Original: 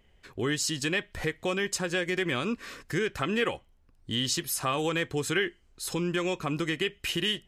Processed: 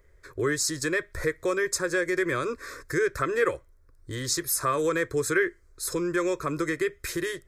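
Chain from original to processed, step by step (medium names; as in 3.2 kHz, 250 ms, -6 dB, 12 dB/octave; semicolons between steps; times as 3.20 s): static phaser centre 790 Hz, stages 6; trim +5.5 dB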